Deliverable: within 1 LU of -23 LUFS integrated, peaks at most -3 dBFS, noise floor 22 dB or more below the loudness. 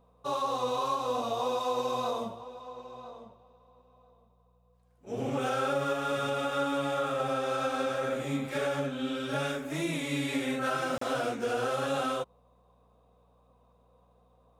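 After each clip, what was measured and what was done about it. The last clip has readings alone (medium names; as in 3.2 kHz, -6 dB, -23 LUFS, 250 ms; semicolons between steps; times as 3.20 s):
dropouts 1; longest dropout 34 ms; hum 60 Hz; highest harmonic 180 Hz; hum level -65 dBFS; loudness -31.5 LUFS; peak level -18.5 dBFS; loudness target -23.0 LUFS
-> interpolate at 10.98 s, 34 ms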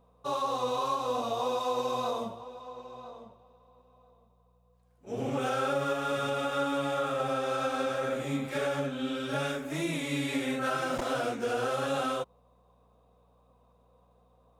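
dropouts 0; hum 60 Hz; highest harmonic 180 Hz; hum level -65 dBFS
-> de-hum 60 Hz, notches 3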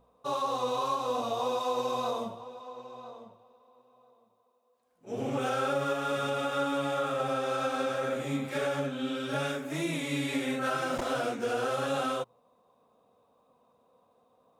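hum not found; loudness -31.5 LUFS; peak level -18.5 dBFS; loudness target -23.0 LUFS
-> trim +8.5 dB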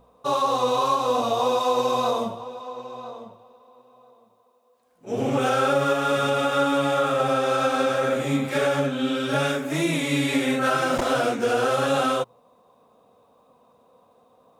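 loudness -23.0 LUFS; peak level -10.0 dBFS; noise floor -61 dBFS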